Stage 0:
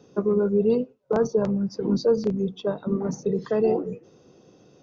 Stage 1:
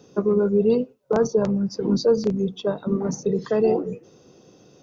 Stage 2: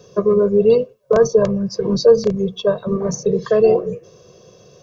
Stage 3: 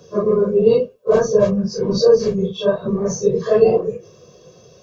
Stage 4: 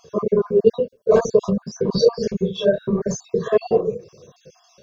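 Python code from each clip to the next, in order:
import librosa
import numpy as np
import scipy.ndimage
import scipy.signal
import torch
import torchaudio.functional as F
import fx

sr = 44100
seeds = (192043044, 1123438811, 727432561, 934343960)

y1 = fx.high_shelf(x, sr, hz=5000.0, db=7.5)
y1 = F.gain(torch.from_numpy(y1), 2.0).numpy()
y2 = y1 + 0.92 * np.pad(y1, (int(1.8 * sr / 1000.0), 0))[:len(y1)]
y2 = F.gain(torch.from_numpy(y2), 3.5).numpy()
y3 = fx.phase_scramble(y2, sr, seeds[0], window_ms=100)
y4 = fx.spec_dropout(y3, sr, seeds[1], share_pct=41)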